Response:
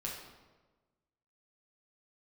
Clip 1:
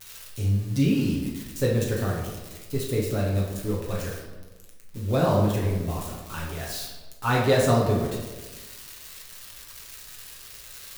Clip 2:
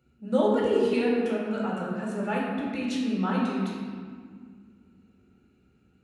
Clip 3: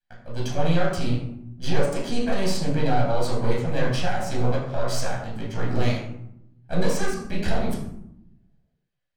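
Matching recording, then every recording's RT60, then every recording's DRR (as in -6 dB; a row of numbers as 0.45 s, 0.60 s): 1; 1.3 s, 1.9 s, 0.75 s; -3.5 dB, -5.0 dB, -5.0 dB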